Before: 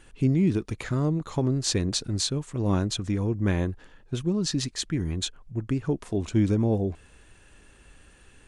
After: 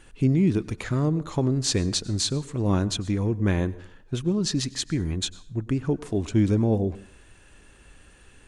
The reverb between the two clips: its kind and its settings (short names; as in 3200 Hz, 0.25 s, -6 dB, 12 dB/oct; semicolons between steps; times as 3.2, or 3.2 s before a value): plate-style reverb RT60 0.57 s, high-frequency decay 0.75×, pre-delay 85 ms, DRR 19 dB; gain +1.5 dB